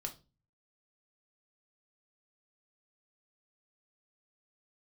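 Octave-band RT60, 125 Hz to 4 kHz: 0.65, 0.50, 0.35, 0.25, 0.25, 0.30 s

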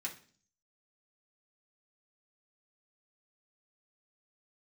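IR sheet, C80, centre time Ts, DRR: 17.0 dB, 14 ms, -3.5 dB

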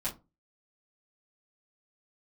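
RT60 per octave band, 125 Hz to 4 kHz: 0.35, 0.35, 0.30, 0.25, 0.15, 0.15 s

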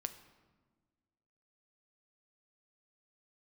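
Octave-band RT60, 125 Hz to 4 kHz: 1.8, 1.9, 1.5, 1.3, 1.1, 0.85 s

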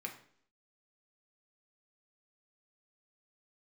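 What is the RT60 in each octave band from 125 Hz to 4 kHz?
0.55, 0.70, 0.65, 0.55, 0.55, 0.60 s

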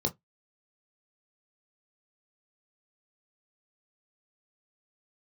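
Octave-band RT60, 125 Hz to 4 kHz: 0.15, 0.15, 0.15, 0.15, 0.15, 0.10 s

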